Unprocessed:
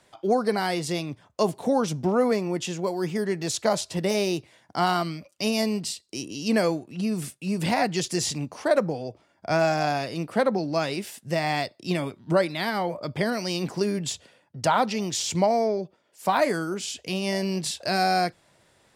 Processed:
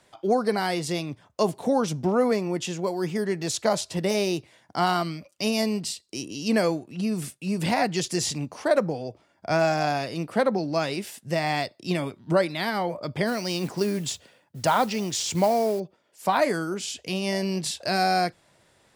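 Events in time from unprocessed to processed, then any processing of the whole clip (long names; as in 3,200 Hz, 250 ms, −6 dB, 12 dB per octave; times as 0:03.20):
0:13.27–0:15.80: noise that follows the level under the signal 22 dB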